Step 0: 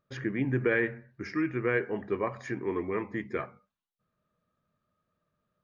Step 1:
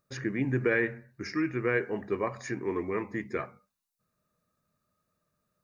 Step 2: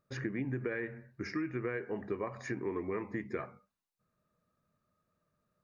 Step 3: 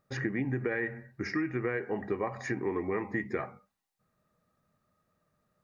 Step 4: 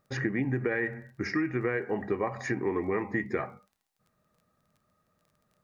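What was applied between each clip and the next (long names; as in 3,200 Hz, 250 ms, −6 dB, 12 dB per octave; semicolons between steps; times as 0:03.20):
bass and treble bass 0 dB, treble +10 dB; notch filter 3,200 Hz, Q 6.2
high-shelf EQ 4,100 Hz −11 dB; downward compressor 10 to 1, threshold −32 dBFS, peak gain reduction 11 dB
hollow resonant body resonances 790/1,900 Hz, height 10 dB; level +4 dB
surface crackle 18 per second −54 dBFS; level +2.5 dB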